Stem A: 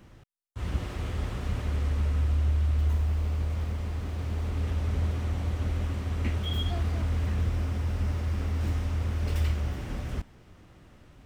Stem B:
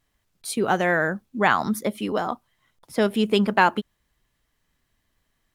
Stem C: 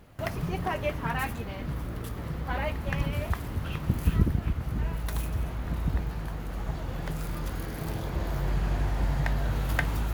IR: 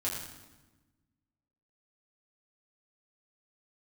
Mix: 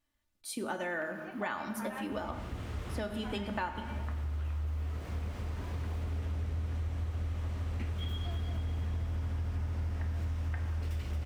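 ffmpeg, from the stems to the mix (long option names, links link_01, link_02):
-filter_complex "[0:a]adelay=1550,volume=-4dB,asplit=3[link_01][link_02][link_03];[link_02]volume=-22.5dB[link_04];[link_03]volume=-7dB[link_05];[1:a]aecho=1:1:3.4:0.54,volume=-13.5dB,asplit=3[link_06][link_07][link_08];[link_07]volume=-7.5dB[link_09];[2:a]acrossover=split=2600[link_10][link_11];[link_11]acompressor=threshold=-59dB:ratio=4:attack=1:release=60[link_12];[link_10][link_12]amix=inputs=2:normalize=0,highpass=570,adelay=750,volume=-13dB,asplit=2[link_13][link_14];[link_14]volume=-4.5dB[link_15];[link_08]apad=whole_len=564875[link_16];[link_01][link_16]sidechaincompress=threshold=-42dB:ratio=8:attack=16:release=1140[link_17];[3:a]atrim=start_sample=2205[link_18];[link_04][link_09][link_15]amix=inputs=3:normalize=0[link_19];[link_19][link_18]afir=irnorm=-1:irlink=0[link_20];[link_05]aecho=0:1:224|448|672|896|1120|1344|1568|1792|2016|2240:1|0.6|0.36|0.216|0.13|0.0778|0.0467|0.028|0.0168|0.0101[link_21];[link_17][link_06][link_13][link_20][link_21]amix=inputs=5:normalize=0,acompressor=threshold=-33dB:ratio=4"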